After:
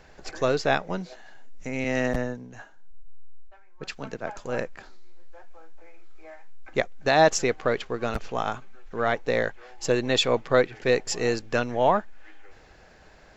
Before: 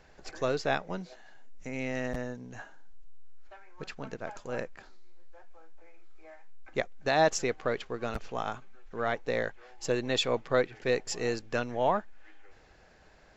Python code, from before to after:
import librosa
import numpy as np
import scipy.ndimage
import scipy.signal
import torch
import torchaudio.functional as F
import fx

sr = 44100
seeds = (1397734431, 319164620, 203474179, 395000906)

y = fx.band_widen(x, sr, depth_pct=70, at=(1.84, 4.38))
y = y * 10.0 ** (6.0 / 20.0)